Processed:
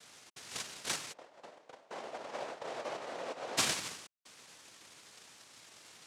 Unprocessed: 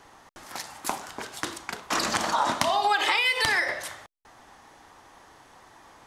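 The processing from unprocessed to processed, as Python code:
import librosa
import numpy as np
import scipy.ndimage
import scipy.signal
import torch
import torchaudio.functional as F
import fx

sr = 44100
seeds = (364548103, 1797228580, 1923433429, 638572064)

y = fx.tube_stage(x, sr, drive_db=22.0, bias=0.7)
y = fx.noise_vocoder(y, sr, seeds[0], bands=1)
y = fx.bandpass_q(y, sr, hz=590.0, q=2.2, at=(1.12, 3.57), fade=0.02)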